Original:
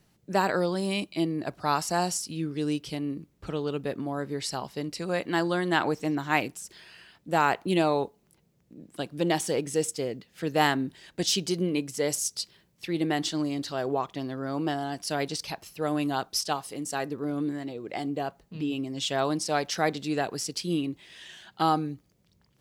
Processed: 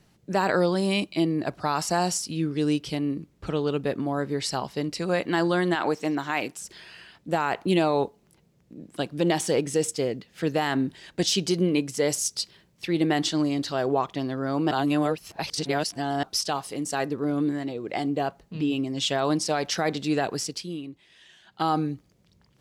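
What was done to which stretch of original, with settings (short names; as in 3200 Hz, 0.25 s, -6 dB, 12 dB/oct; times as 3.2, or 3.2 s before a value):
5.75–6.59 HPF 310 Hz 6 dB/oct
14.71–16.23 reverse
20.37–21.79 dip -11.5 dB, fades 0.36 s
whole clip: limiter -17.5 dBFS; high shelf 12000 Hz -10 dB; gain +4.5 dB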